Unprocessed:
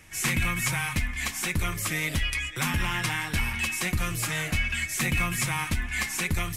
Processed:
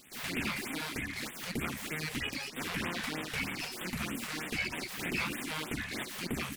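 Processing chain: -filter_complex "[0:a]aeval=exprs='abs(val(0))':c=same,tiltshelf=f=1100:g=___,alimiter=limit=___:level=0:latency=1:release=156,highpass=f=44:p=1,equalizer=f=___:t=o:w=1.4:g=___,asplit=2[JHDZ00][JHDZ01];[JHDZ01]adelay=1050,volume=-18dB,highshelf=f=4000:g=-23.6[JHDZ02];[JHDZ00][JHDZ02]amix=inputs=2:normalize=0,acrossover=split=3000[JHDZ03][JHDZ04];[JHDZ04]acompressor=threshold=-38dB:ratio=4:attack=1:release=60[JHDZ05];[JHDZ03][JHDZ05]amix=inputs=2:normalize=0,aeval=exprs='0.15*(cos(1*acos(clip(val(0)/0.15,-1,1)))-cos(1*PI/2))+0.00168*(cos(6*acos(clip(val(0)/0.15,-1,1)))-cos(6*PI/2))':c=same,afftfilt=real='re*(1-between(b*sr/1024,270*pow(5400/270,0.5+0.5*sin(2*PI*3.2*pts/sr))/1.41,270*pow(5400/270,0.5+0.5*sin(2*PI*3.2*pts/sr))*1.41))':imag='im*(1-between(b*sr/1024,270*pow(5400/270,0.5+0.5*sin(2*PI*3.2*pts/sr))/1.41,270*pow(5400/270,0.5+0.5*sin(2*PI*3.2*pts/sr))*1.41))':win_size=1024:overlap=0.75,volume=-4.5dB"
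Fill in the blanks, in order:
-6.5, -15dB, 250, 15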